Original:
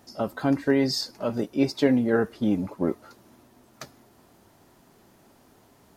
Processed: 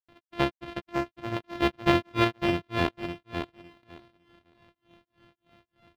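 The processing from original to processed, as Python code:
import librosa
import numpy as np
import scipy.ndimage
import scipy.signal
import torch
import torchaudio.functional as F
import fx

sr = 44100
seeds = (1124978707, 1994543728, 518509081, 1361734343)

y = np.r_[np.sort(x[:len(x) // 128 * 128].reshape(-1, 128), axis=1).ravel(), x[len(x) // 128 * 128:]]
y = fx.granulator(y, sr, seeds[0], grain_ms=212.0, per_s=3.3, spray_ms=100.0, spread_st=0)
y = fx.high_shelf_res(y, sr, hz=5000.0, db=-14.0, q=1.5)
y = fx.echo_feedback(y, sr, ms=556, feedback_pct=16, wet_db=-6.5)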